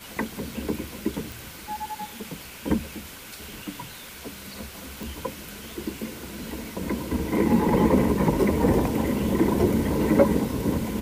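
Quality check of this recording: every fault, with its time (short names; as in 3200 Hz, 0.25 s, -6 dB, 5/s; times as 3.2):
1.32 pop
5.03 pop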